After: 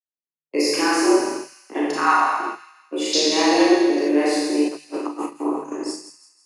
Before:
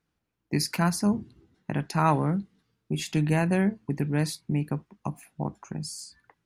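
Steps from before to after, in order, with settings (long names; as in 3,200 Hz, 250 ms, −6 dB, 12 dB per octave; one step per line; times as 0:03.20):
0:01.95–0:02.40: Butterworth high-pass 560 Hz 36 dB per octave
four-comb reverb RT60 1.5 s, combs from 28 ms, DRR −8 dB
0:04.68–0:05.26: compressor whose output falls as the input rises −28 dBFS, ratio −1
low-pass filter 9,400 Hz 24 dB per octave
noise gate −27 dBFS, range −39 dB
frequency shifter +150 Hz
0:03.13–0:04.09: flat-topped bell 4,800 Hz +15.5 dB 1 octave
delay with a high-pass on its return 164 ms, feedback 46%, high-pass 2,300 Hz, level −10.5 dB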